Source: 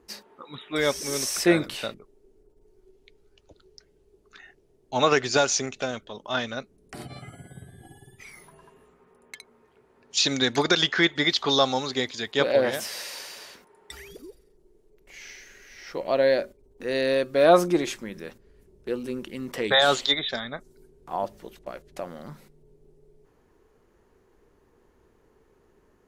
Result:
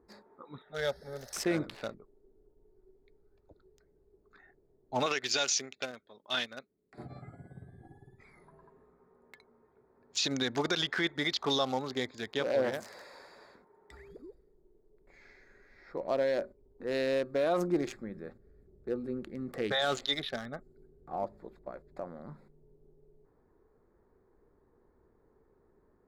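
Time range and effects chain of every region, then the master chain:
0.62–1.33 s: static phaser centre 1.6 kHz, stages 8 + upward compressor, threshold -45 dBFS
5.06–6.98 s: frequency weighting D + upward expansion, over -37 dBFS
17.76–21.23 s: Butterworth band-stop 970 Hz, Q 5.8 + peaking EQ 78 Hz +3 dB 2.3 oct
whole clip: local Wiener filter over 15 samples; peak limiter -14.5 dBFS; trim -5 dB

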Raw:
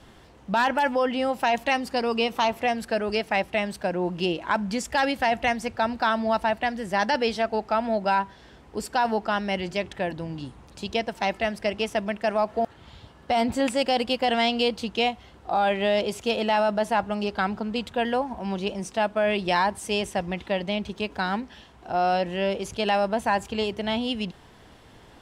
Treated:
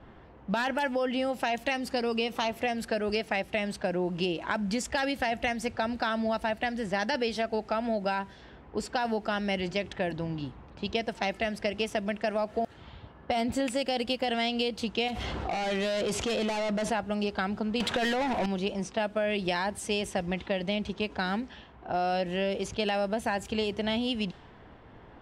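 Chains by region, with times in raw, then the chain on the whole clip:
15.08–16.92 s: hard clipper -26.5 dBFS + level flattener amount 70%
17.80–18.46 s: compressor with a negative ratio -26 dBFS, ratio -0.5 + overdrive pedal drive 25 dB, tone 4 kHz, clips at -16 dBFS
whole clip: level-controlled noise filter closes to 1.7 kHz, open at -23 dBFS; dynamic bell 1 kHz, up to -7 dB, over -38 dBFS, Q 2; compression, threshold -25 dBFS

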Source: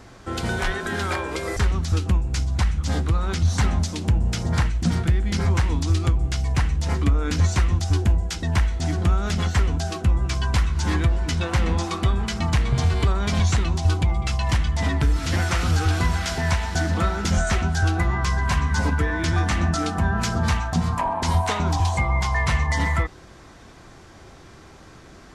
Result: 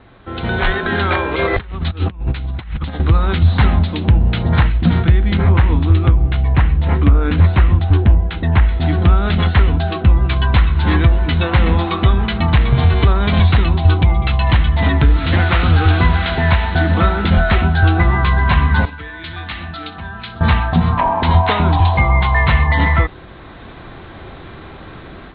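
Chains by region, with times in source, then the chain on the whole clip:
1.34–3.00 s: bass shelf 400 Hz -3.5 dB + compressor with a negative ratio -30 dBFS, ratio -0.5 + Savitzky-Golay filter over 15 samples
5.34–8.69 s: distance through air 230 m + loudspeaker Doppler distortion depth 0.17 ms
18.85–20.41 s: pre-emphasis filter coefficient 0.9 + flutter echo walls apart 10.3 m, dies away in 0.22 s
whole clip: steep low-pass 4 kHz 96 dB/octave; level rider gain up to 11.5 dB

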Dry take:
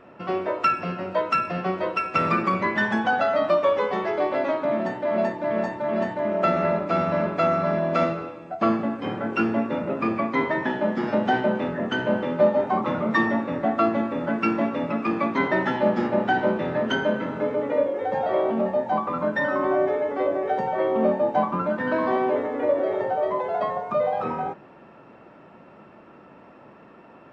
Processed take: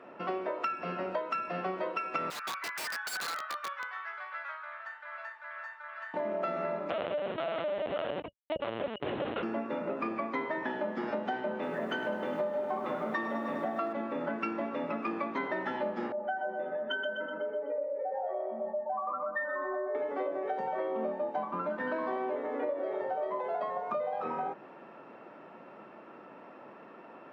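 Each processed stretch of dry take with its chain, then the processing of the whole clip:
2.30–6.14 s: ladder high-pass 1.3 kHz, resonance 65% + treble shelf 2.5 kHz -2.5 dB + integer overflow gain 27.5 dB
6.90–9.43 s: Schmitt trigger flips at -26 dBFS + small resonant body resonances 570/2900 Hz, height 11 dB + LPC vocoder at 8 kHz pitch kept
11.53–13.93 s: high-pass 76 Hz 24 dB/octave + hum notches 60/120/180/240/300 Hz + bit-crushed delay 102 ms, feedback 80%, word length 8-bit, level -10 dB
16.12–19.95 s: spectral contrast enhancement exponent 1.9 + high-pass 1.3 kHz 6 dB/octave + feedback delay 125 ms, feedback 48%, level -6 dB
whole clip: Bessel high-pass 300 Hz, order 2; treble shelf 4.6 kHz -8.5 dB; compression, threshold -31 dBFS

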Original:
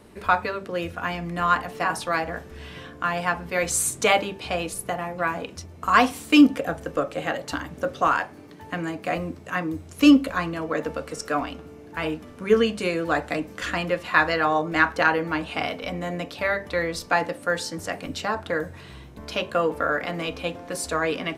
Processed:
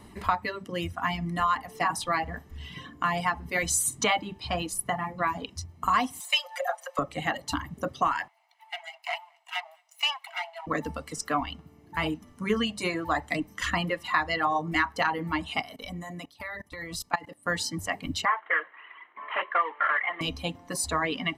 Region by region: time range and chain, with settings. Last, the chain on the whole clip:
6.20–6.99 s: Chebyshev high-pass 530 Hz, order 8 + upward compressor, threshold -36 dBFS + comb 5.6 ms, depth 98%
8.28–10.67 s: comb filter that takes the minimum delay 1.4 ms + rippled Chebyshev high-pass 650 Hz, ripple 9 dB + delay 215 ms -22 dB
15.61–17.46 s: peaking EQ 11 kHz +8 dB 1.2 oct + level held to a coarse grid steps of 18 dB
18.25–20.21 s: CVSD coder 16 kbps + high-pass 440 Hz 24 dB/octave + high-order bell 1.5 kHz +10.5 dB 1.3 oct
whole clip: reverb removal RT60 1.7 s; comb 1 ms, depth 55%; compression 4:1, threshold -22 dBFS

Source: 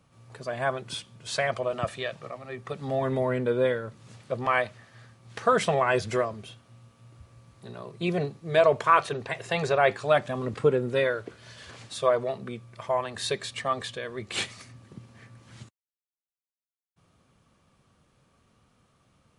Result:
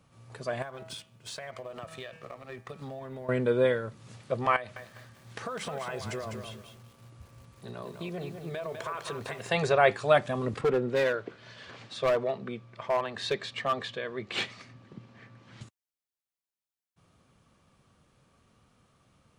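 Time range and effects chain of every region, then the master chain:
0.62–3.29 s: companding laws mixed up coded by A + de-hum 161.6 Hz, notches 19 + compression 16:1, threshold -36 dBFS
4.56–9.49 s: compression 8:1, threshold -33 dBFS + bit-crushed delay 202 ms, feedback 35%, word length 9-bit, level -6 dB
10.61–15.61 s: band-pass 130–4200 Hz + overload inside the chain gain 21 dB
whole clip: none

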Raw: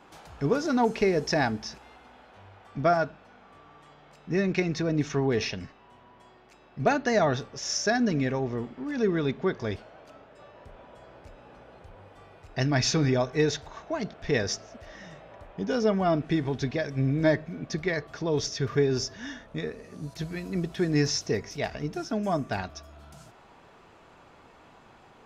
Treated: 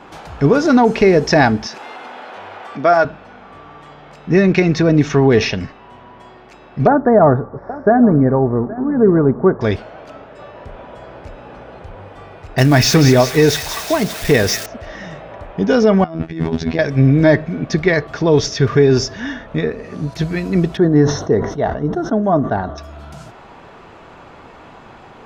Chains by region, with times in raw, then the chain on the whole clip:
1.67–3.05 s: Bessel high-pass 380 Hz + upward compressor, threshold -38 dBFS
6.87–9.61 s: inverse Chebyshev low-pass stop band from 2.6 kHz + delay 822 ms -18 dB
12.58–14.66 s: zero-crossing glitches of -26 dBFS + feedback echo behind a high-pass 187 ms, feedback 66%, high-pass 2.1 kHz, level -7 dB
16.04–16.79 s: expander -34 dBFS + compressor with a negative ratio -31 dBFS, ratio -0.5 + robot voice 81.4 Hz
19.20–20.13 s: treble shelf 6.2 kHz -12 dB + tape noise reduction on one side only encoder only
20.77–22.78 s: boxcar filter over 18 samples + bass shelf 170 Hz -6 dB + decay stretcher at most 81 dB/s
whole clip: treble shelf 5.5 kHz -10 dB; loudness maximiser +15.5 dB; trim -1 dB

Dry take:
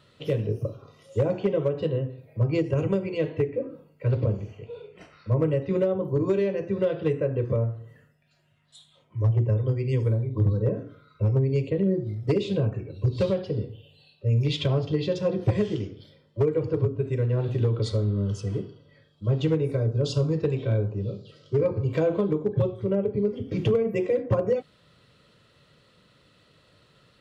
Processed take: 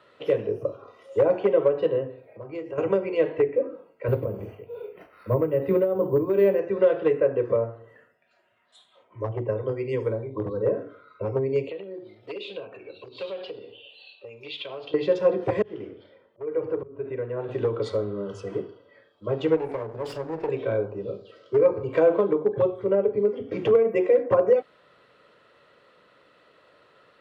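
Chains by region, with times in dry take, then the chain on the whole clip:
2.26–2.78 s: compression 2:1, threshold -42 dBFS + doubling 29 ms -9.5 dB
4.08–6.59 s: bass shelf 270 Hz +11 dB + tremolo 2.5 Hz, depth 62% + careless resampling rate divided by 3×, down filtered, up hold
11.69–14.94 s: high-order bell 3.3 kHz +12 dB 1.1 oct + compression 3:1, threshold -34 dBFS + high-pass 440 Hz 6 dB/octave
15.62–17.49 s: low-pass 3 kHz + compression 1.5:1, threshold -33 dBFS + slow attack 218 ms
19.56–20.49 s: comb filter that takes the minimum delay 0.39 ms + compression 3:1, threshold -29 dBFS
whole clip: three-band isolator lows -19 dB, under 340 Hz, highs -15 dB, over 2.3 kHz; hum notches 50/100/150 Hz; trim +7 dB

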